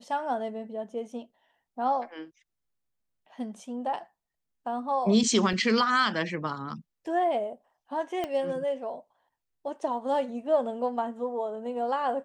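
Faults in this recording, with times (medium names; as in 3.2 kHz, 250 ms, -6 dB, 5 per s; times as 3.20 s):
5.53 s: dropout 2.3 ms
8.24 s: pop -18 dBFS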